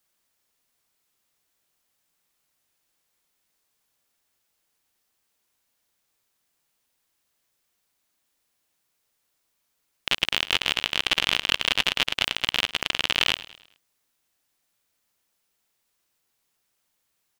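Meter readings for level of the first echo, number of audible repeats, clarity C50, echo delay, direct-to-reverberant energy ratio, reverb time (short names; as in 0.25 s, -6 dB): -17.0 dB, 3, none, 0.105 s, none, none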